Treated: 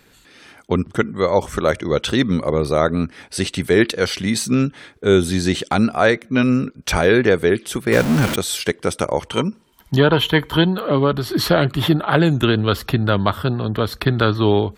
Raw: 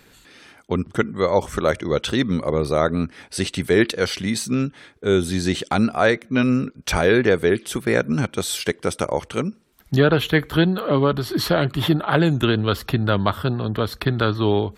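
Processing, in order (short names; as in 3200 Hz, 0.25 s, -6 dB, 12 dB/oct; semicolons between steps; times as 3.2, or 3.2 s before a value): 7.92–8.36 zero-crossing step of -18.5 dBFS; 9.27–10.75 small resonant body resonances 950/3100 Hz, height 14 dB; AGC; gain -1 dB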